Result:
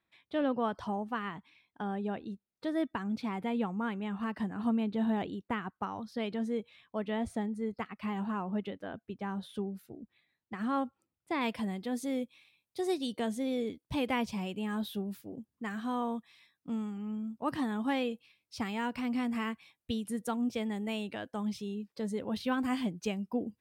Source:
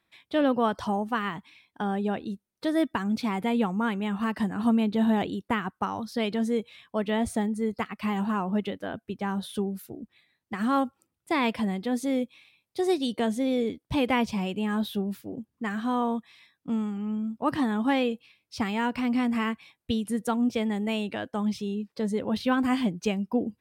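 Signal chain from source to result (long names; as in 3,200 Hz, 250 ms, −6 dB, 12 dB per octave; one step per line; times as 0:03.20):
high-shelf EQ 5,500 Hz −9.5 dB, from 0:11.41 +3.5 dB
level −7 dB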